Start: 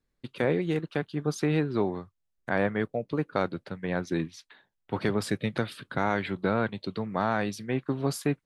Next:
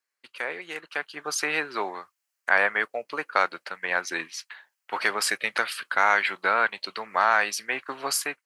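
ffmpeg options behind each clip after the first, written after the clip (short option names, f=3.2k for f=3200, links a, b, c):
-af "highpass=1.2k,equalizer=f=3.6k:w=5.7:g=-10.5,dynaudnorm=f=680:g=3:m=9dB,volume=4dB"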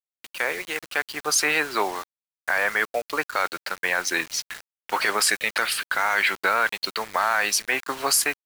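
-af "highshelf=f=5k:g=7,alimiter=limit=-15dB:level=0:latency=1:release=13,acrusher=bits=6:mix=0:aa=0.000001,volume=5dB"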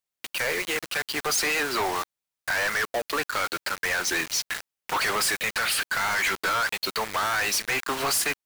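-filter_complex "[0:a]asplit=2[a][b];[b]alimiter=limit=-20dB:level=0:latency=1:release=298,volume=-2dB[c];[a][c]amix=inputs=2:normalize=0,volume=24.5dB,asoftclip=hard,volume=-24.5dB,volume=2dB"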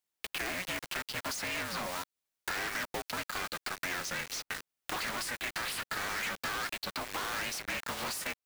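-filter_complex "[0:a]acrossover=split=490|2100[a][b][c];[a]acompressor=threshold=-47dB:ratio=4[d];[b]acompressor=threshold=-40dB:ratio=4[e];[c]acompressor=threshold=-40dB:ratio=4[f];[d][e][f]amix=inputs=3:normalize=0,aeval=exprs='val(0)*sgn(sin(2*PI*180*n/s))':c=same"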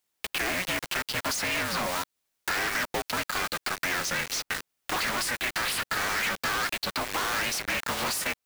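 -af "asoftclip=type=tanh:threshold=-29dB,volume=8.5dB"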